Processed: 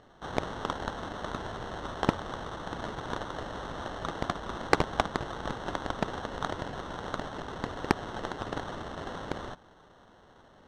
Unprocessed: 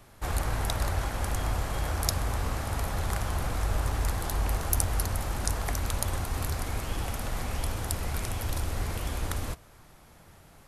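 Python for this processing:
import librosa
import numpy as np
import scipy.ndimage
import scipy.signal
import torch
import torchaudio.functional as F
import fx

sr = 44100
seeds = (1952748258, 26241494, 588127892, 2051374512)

y = fx.riaa(x, sr, side='recording')
y = fx.sample_hold(y, sr, seeds[0], rate_hz=2400.0, jitter_pct=0)
y = fx.air_absorb(y, sr, metres=120.0)
y = fx.doppler_dist(y, sr, depth_ms=0.53)
y = F.gain(torch.from_numpy(y), -5.5).numpy()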